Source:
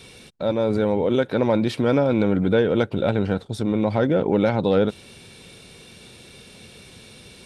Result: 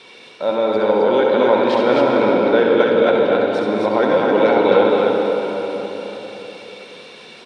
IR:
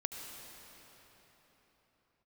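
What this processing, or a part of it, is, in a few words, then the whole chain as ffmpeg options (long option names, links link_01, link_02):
station announcement: -filter_complex "[0:a]asettb=1/sr,asplit=3[link_01][link_02][link_03];[link_01]atrim=end=4.034[link_04];[link_02]atrim=start=4.03:end=4.47,asetpts=PTS-STARTPTS,afade=type=in:duration=0.004:curve=qsin,afade=type=out:start_time=0.436:duration=0.004:curve=qsin,highshelf=frequency=5200:gain=12[link_05];[link_03]atrim=start=4.466[link_06];[link_04][link_05]acrossfade=duration=0.004:curve1=hsin:curve2=qsin[link_07];[link_07][link_06]acrossfade=duration=0.004:curve1=qsin:curve2=hsin,highpass=380,lowpass=4100,equalizer=frequency=1000:width_type=o:width=0.29:gain=5,aecho=1:1:67.06|215.7|262.4:0.562|0.282|0.708[link_08];[1:a]atrim=start_sample=2205[link_09];[link_08][link_09]afir=irnorm=-1:irlink=0,volume=5.5dB"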